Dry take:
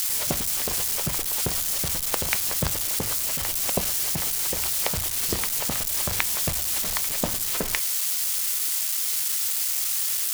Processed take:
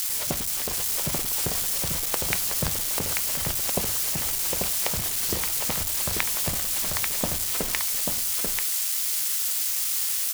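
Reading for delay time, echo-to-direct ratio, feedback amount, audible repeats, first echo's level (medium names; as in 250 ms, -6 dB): 839 ms, -4.0 dB, no regular repeats, 1, -4.0 dB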